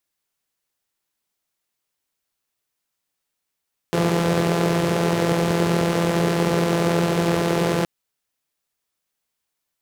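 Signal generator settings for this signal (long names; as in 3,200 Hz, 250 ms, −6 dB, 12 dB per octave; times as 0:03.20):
pulse-train model of a four-cylinder engine, steady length 3.92 s, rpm 5,100, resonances 180/390 Hz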